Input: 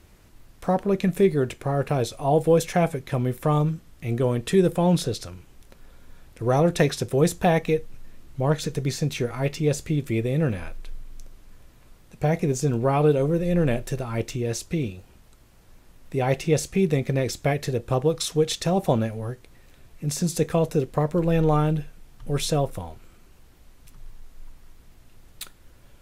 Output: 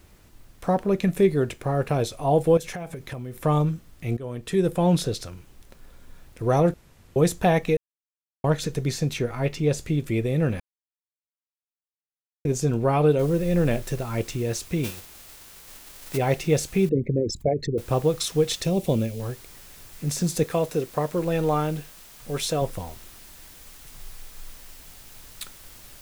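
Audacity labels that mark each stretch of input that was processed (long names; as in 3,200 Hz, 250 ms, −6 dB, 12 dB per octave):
2.570000	3.450000	downward compressor 10 to 1, threshold −30 dBFS
4.170000	4.840000	fade in, from −16.5 dB
6.740000	7.160000	fill with room tone
7.770000	8.440000	silence
9.170000	9.780000	high-shelf EQ 5,100 Hz → 8,100 Hz −5.5 dB
10.600000	12.450000	silence
13.190000	13.190000	noise floor change −67 dB −48 dB
14.830000	16.160000	spectral envelope flattened exponent 0.6
16.890000	17.780000	spectral envelope exaggerated exponent 3
18.640000	19.200000	flat-topped bell 1,100 Hz −10.5 dB
20.440000	22.620000	low-shelf EQ 170 Hz −11 dB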